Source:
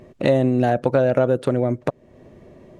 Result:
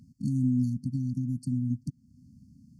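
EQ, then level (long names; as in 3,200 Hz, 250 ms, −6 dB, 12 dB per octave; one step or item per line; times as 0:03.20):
high-pass filter 54 Hz
linear-phase brick-wall band-stop 280–4,300 Hz
−4.5 dB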